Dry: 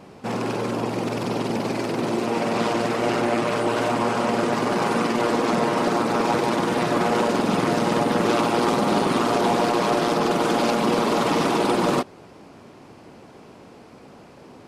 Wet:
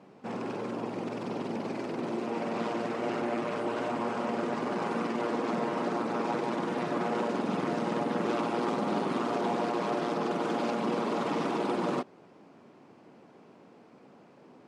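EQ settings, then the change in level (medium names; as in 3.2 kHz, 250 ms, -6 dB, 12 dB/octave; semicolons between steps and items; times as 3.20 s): Chebyshev band-pass 180–6200 Hz, order 2; peaking EQ 5.1 kHz -7 dB 1.6 oct; -8.5 dB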